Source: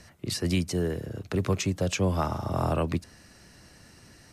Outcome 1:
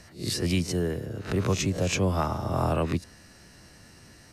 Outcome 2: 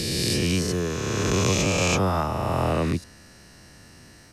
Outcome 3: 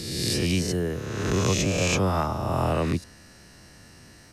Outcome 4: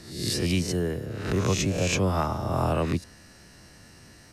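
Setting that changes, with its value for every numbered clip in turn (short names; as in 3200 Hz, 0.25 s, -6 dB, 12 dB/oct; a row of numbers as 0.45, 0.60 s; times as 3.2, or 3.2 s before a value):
spectral swells, rising 60 dB in: 0.31, 3.17, 1.45, 0.66 s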